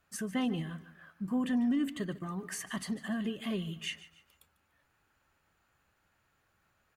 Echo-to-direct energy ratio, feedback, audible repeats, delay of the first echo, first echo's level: -16.5 dB, 38%, 3, 147 ms, -17.0 dB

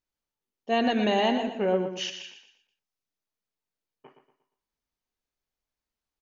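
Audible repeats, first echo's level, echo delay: 3, -8.5 dB, 118 ms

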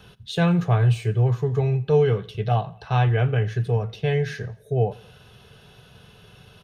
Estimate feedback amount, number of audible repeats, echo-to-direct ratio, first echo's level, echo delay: 48%, 2, -21.5 dB, -22.5 dB, 86 ms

